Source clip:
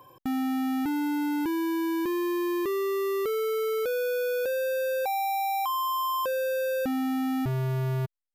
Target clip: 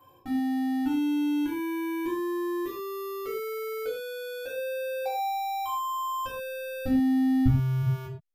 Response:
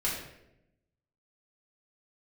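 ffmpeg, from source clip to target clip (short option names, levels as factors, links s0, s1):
-filter_complex "[0:a]asplit=3[s0][s1][s2];[s0]afade=t=out:st=5.28:d=0.02[s3];[s1]asubboost=boost=8:cutoff=160,afade=t=in:st=5.28:d=0.02,afade=t=out:st=7.82:d=0.02[s4];[s2]afade=t=in:st=7.82:d=0.02[s5];[s3][s4][s5]amix=inputs=3:normalize=0[s6];[1:a]atrim=start_sample=2205,afade=t=out:st=0.26:d=0.01,atrim=end_sample=11907,asetrate=66150,aresample=44100[s7];[s6][s7]afir=irnorm=-1:irlink=0,volume=0.473"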